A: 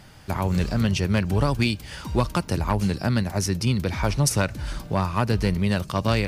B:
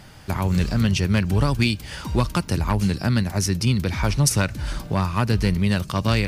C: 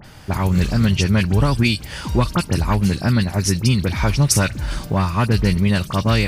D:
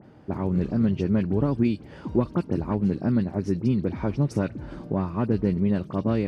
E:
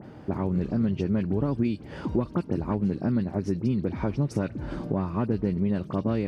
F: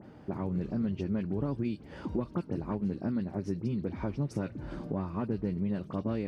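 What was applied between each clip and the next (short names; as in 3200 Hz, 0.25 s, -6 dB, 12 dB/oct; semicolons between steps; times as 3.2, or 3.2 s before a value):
dynamic EQ 630 Hz, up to -5 dB, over -35 dBFS, Q 0.78; gain +3 dB
dispersion highs, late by 45 ms, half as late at 2700 Hz; gain +3.5 dB
band-pass 320 Hz, Q 1.3
compressor 2:1, threshold -35 dBFS, peak gain reduction 10.5 dB; gain +6 dB
flange 0.99 Hz, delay 3.1 ms, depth 3.9 ms, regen -74%; gain -2 dB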